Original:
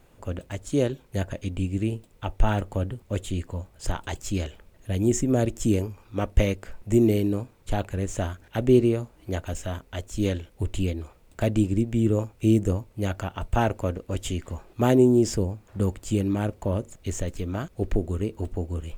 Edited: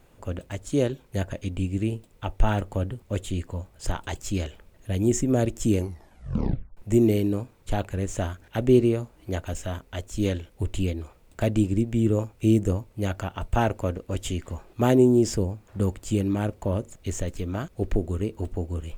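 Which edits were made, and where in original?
5.77 tape stop 1.00 s

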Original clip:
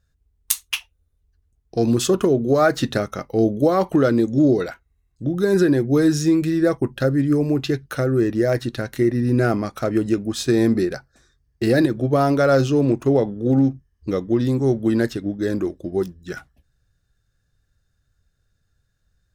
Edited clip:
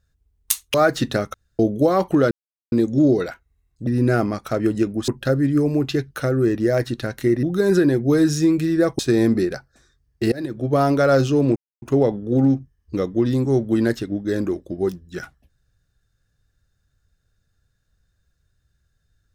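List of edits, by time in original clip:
0.74–2.55 cut
3.15–3.4 room tone
4.12 insert silence 0.41 s
5.27–6.83 swap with 9.18–10.39
11.72–12.17 fade in, from -23 dB
12.96 insert silence 0.26 s

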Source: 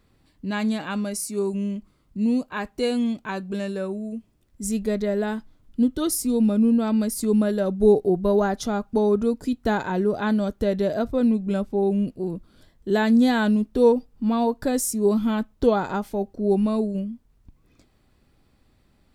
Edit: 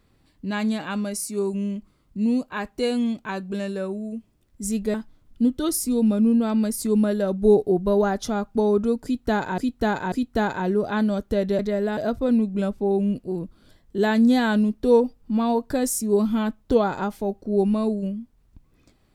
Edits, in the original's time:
4.94–5.32 move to 10.89
9.42–9.96 loop, 3 plays

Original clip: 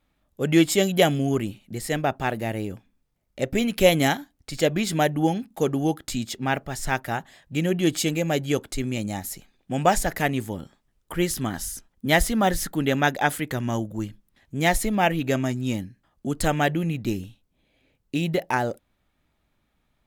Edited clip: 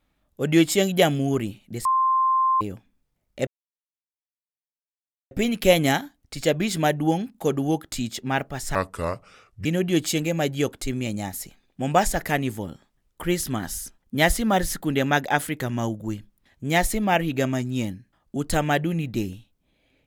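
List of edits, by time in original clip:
1.85–2.61 bleep 1050 Hz -17 dBFS
3.47 insert silence 1.84 s
6.91–7.56 speed 72%

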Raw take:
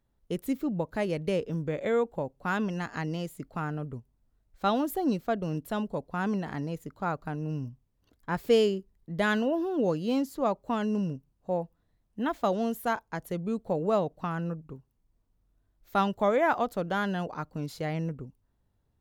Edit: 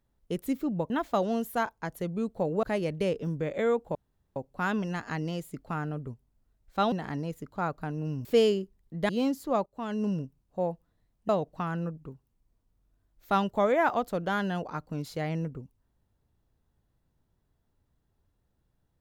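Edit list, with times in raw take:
2.22 insert room tone 0.41 s
4.78–6.36 cut
7.69–8.41 cut
9.25–10 cut
10.57–10.99 fade in, from -16 dB
12.2–13.93 move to 0.9

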